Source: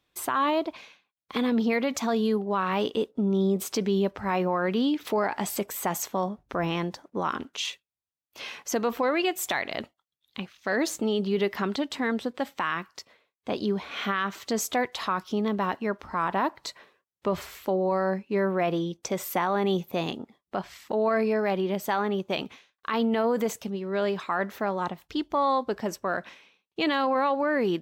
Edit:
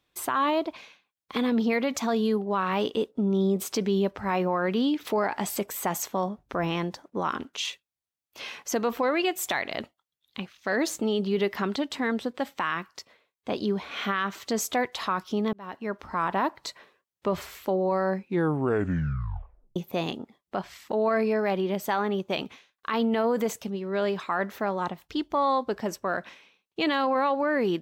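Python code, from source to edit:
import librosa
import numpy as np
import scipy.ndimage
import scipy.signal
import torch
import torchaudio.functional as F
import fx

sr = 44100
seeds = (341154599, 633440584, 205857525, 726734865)

y = fx.edit(x, sr, fx.fade_in_span(start_s=15.53, length_s=0.51),
    fx.tape_stop(start_s=18.17, length_s=1.59), tone=tone)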